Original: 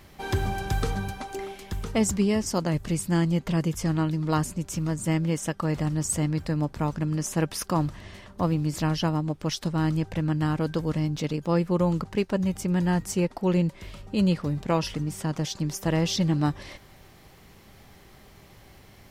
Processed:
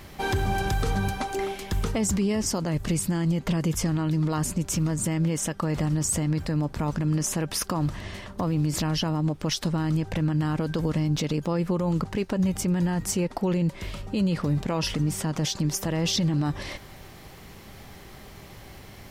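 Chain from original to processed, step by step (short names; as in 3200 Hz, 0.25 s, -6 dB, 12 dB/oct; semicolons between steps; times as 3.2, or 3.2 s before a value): limiter -23.5 dBFS, peak gain reduction 12 dB; gain +6.5 dB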